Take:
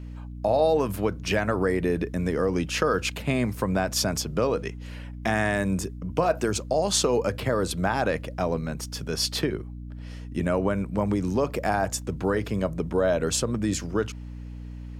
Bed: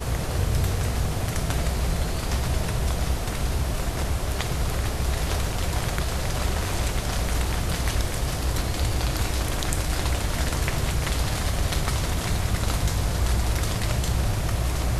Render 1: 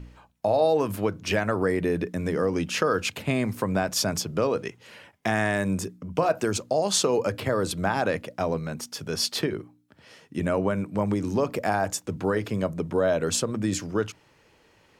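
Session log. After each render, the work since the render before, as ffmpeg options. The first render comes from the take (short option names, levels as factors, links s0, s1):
-af "bandreject=f=60:t=h:w=4,bandreject=f=120:t=h:w=4,bandreject=f=180:t=h:w=4,bandreject=f=240:t=h:w=4,bandreject=f=300:t=h:w=4"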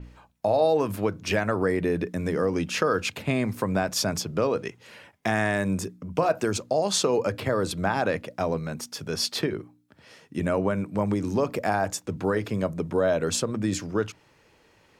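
-af "bandreject=f=3000:w=30,adynamicequalizer=threshold=0.00631:dfrequency=6000:dqfactor=0.7:tfrequency=6000:tqfactor=0.7:attack=5:release=100:ratio=0.375:range=2:mode=cutabove:tftype=highshelf"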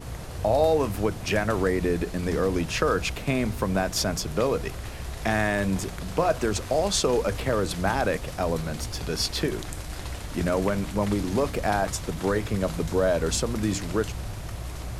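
-filter_complex "[1:a]volume=0.316[s0];[0:a][s0]amix=inputs=2:normalize=0"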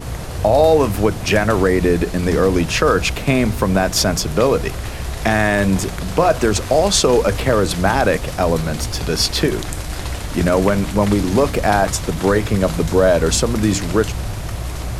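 -af "volume=2.99,alimiter=limit=0.708:level=0:latency=1"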